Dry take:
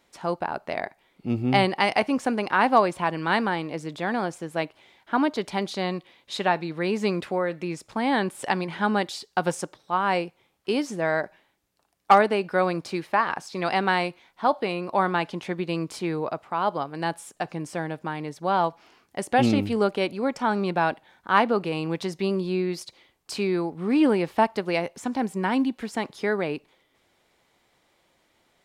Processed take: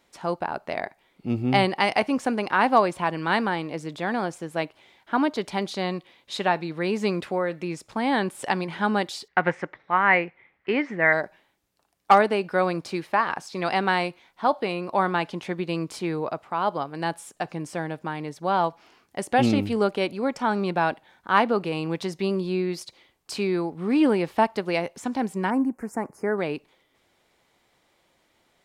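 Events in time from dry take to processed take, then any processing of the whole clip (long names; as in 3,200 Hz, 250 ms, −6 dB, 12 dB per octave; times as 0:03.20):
0:09.28–0:11.13: low-pass with resonance 2,000 Hz, resonance Q 6.5
0:25.50–0:26.38: Butterworth band-reject 3,500 Hz, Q 0.62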